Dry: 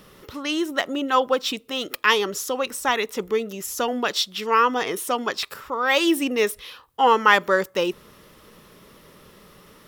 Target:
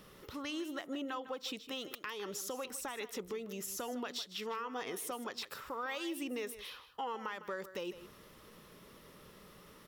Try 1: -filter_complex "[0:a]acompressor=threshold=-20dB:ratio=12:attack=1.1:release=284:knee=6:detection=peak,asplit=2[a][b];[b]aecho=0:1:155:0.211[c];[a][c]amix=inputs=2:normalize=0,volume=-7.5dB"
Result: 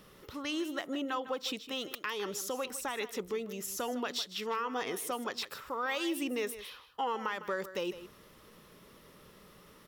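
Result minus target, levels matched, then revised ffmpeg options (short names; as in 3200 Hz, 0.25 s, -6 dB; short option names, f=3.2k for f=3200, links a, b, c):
compressor: peak gain reduction -6 dB
-filter_complex "[0:a]acompressor=threshold=-26.5dB:ratio=12:attack=1.1:release=284:knee=6:detection=peak,asplit=2[a][b];[b]aecho=0:1:155:0.211[c];[a][c]amix=inputs=2:normalize=0,volume=-7.5dB"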